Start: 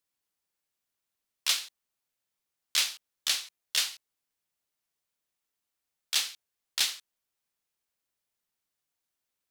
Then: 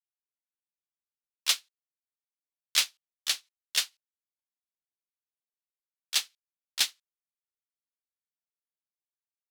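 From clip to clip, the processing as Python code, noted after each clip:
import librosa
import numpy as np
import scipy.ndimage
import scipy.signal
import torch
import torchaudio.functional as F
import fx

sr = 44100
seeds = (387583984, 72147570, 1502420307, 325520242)

y = fx.upward_expand(x, sr, threshold_db=-42.0, expansion=2.5)
y = y * 10.0 ** (3.5 / 20.0)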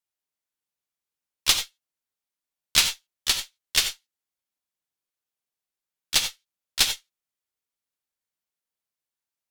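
y = fx.cheby_harmonics(x, sr, harmonics=(6, 8), levels_db=(-17, -27), full_scale_db=-8.5)
y = fx.rev_gated(y, sr, seeds[0], gate_ms=110, shape='rising', drr_db=7.5)
y = y * 10.0 ** (5.0 / 20.0)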